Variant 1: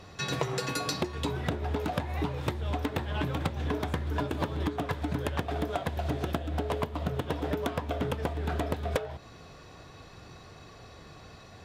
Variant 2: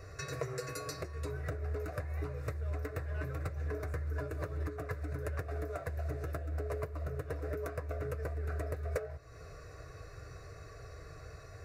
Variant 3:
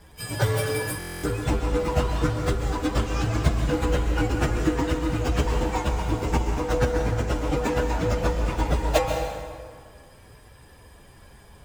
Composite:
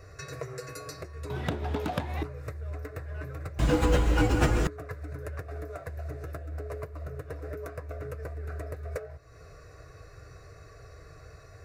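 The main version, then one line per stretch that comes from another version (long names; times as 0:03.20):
2
0:01.30–0:02.23: punch in from 1
0:03.59–0:04.67: punch in from 3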